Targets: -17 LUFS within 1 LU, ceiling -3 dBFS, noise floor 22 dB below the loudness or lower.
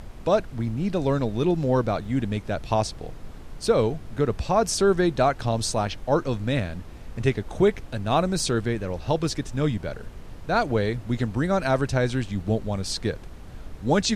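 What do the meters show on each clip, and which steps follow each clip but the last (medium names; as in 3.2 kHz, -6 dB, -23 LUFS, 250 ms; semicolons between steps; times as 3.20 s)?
dropouts 1; longest dropout 3.2 ms; noise floor -41 dBFS; noise floor target -47 dBFS; loudness -25.0 LUFS; peak level -9.0 dBFS; loudness target -17.0 LUFS
-> interpolate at 2.05 s, 3.2 ms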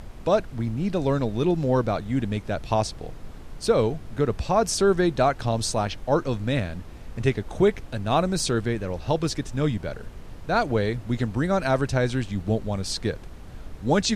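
dropouts 0; noise floor -41 dBFS; noise floor target -47 dBFS
-> noise print and reduce 6 dB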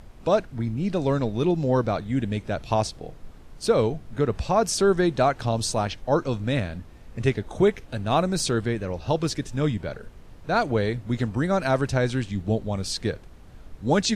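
noise floor -46 dBFS; noise floor target -47 dBFS
-> noise print and reduce 6 dB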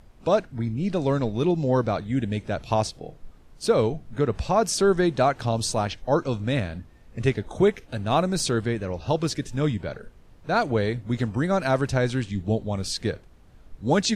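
noise floor -52 dBFS; loudness -25.0 LUFS; peak level -9.0 dBFS; loudness target -17.0 LUFS
-> trim +8 dB; peak limiter -3 dBFS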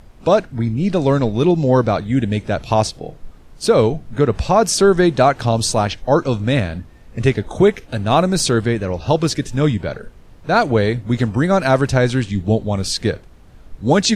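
loudness -17.5 LUFS; peak level -3.0 dBFS; noise floor -44 dBFS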